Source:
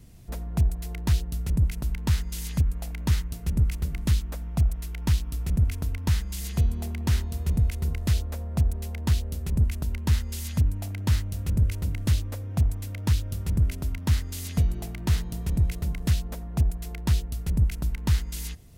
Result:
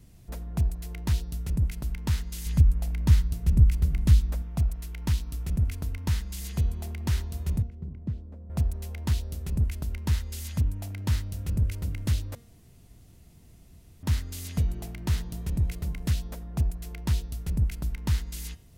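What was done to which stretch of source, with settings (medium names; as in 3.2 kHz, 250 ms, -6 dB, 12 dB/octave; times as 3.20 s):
2.46–4.42 s: bass shelf 180 Hz +9 dB
7.62–8.50 s: band-pass filter 190 Hz, Q 1.1
12.35–14.03 s: room tone
whole clip: de-hum 234.7 Hz, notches 26; trim -3 dB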